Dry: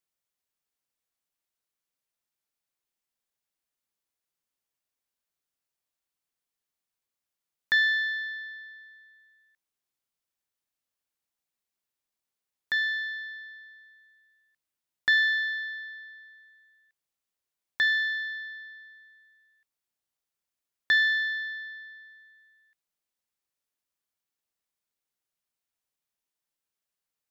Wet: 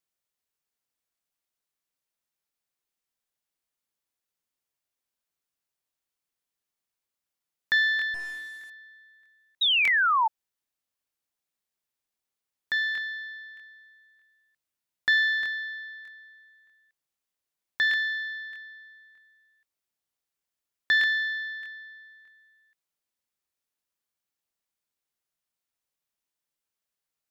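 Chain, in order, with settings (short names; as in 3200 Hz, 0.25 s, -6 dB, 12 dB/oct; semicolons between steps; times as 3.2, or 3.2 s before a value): 8.14–8.7 delta modulation 64 kbps, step -49 dBFS; 9.61–10.28 painted sound fall 850–3900 Hz -22 dBFS; crackling interface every 0.62 s, samples 1024, repeat, from 0.53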